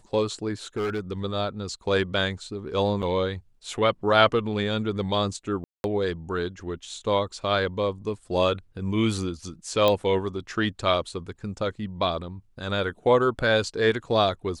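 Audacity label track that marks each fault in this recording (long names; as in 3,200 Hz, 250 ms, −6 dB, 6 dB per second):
0.760000	1.210000	clipping −24 dBFS
3.020000	3.030000	drop-out 7.4 ms
5.640000	5.840000	drop-out 201 ms
9.880000	9.880000	click −9 dBFS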